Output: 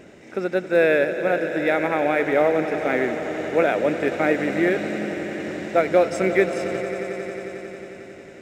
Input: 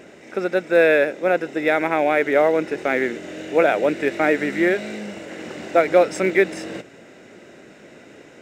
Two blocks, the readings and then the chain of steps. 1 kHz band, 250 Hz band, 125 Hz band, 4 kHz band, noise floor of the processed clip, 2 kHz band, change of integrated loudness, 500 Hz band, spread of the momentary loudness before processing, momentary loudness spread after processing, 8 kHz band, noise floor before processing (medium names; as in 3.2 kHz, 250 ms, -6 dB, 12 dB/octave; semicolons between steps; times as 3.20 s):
-2.0 dB, -0.5 dB, +2.5 dB, -2.5 dB, -43 dBFS, -2.5 dB, -2.5 dB, -1.5 dB, 16 LU, 14 LU, no reading, -46 dBFS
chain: bass shelf 160 Hz +10.5 dB; echo with a slow build-up 90 ms, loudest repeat 5, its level -15.5 dB; trim -3.5 dB